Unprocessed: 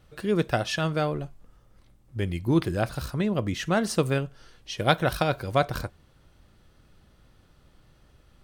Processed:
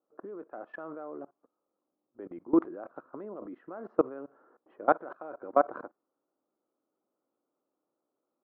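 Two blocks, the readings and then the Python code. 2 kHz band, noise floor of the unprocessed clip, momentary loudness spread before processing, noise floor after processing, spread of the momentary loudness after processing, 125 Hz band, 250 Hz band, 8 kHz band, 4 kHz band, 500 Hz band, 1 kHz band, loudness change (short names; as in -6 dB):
-12.5 dB, -60 dBFS, 11 LU, under -85 dBFS, 18 LU, -28.5 dB, -6.0 dB, under -40 dB, under -35 dB, -5.0 dB, -3.5 dB, -5.0 dB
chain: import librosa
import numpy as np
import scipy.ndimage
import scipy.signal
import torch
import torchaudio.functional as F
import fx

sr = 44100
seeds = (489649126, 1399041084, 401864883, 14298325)

y = fx.env_lowpass(x, sr, base_hz=930.0, full_db=-20.5)
y = scipy.signal.sosfilt(scipy.signal.cheby1(3, 1.0, [280.0, 1300.0], 'bandpass', fs=sr, output='sos'), y)
y = fx.level_steps(y, sr, step_db=22)
y = F.gain(torch.from_numpy(y), 3.0).numpy()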